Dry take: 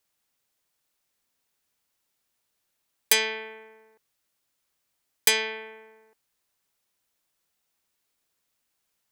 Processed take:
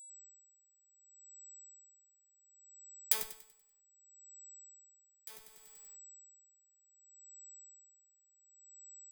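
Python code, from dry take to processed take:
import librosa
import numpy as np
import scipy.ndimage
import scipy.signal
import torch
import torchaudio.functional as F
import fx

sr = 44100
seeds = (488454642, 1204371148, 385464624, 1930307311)

p1 = scipy.signal.sosfilt(scipy.signal.butter(2, 49.0, 'highpass', fs=sr, output='sos'), x)
p2 = fx.schmitt(p1, sr, flips_db=-21.0)
p3 = fx.over_compress(p2, sr, threshold_db=-44.0, ratio=-0.5)
p4 = p3 + 10.0 ** (-73.0 / 20.0) * np.sin(2.0 * np.pi * 7800.0 * np.arange(len(p3)) / sr)
p5 = fx.riaa(p4, sr, side='recording')
p6 = p5 + fx.echo_feedback(p5, sr, ms=96, feedback_pct=54, wet_db=-9.5, dry=0)
p7 = p6 * 10.0 ** (-18 * (0.5 - 0.5 * np.cos(2.0 * np.pi * 0.67 * np.arange(len(p6)) / sr)) / 20.0)
y = F.gain(torch.from_numpy(p7), 11.5).numpy()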